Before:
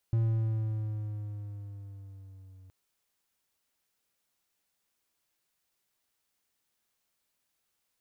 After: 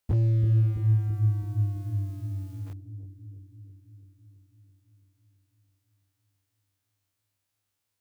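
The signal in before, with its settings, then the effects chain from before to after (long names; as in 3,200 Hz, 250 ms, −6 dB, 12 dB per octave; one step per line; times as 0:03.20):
pitch glide with a swell triangle, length 2.57 s, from 114 Hz, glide −3.5 semitones, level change −27.5 dB, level −21 dB
every bin's largest magnitude spread in time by 60 ms
leveller curve on the samples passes 3
on a send: bucket-brigade delay 331 ms, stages 1,024, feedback 67%, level −7.5 dB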